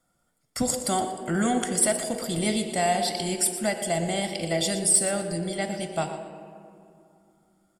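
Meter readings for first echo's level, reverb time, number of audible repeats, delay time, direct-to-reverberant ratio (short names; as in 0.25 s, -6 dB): -13.0 dB, 2.5 s, 2, 0.119 s, 6.5 dB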